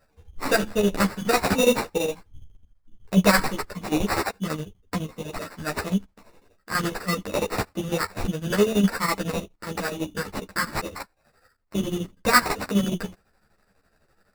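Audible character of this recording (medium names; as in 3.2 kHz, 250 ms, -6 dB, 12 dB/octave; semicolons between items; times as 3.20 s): chopped level 12 Hz, depth 60%, duty 60%; aliases and images of a low sample rate 3.2 kHz, jitter 0%; a shimmering, thickened sound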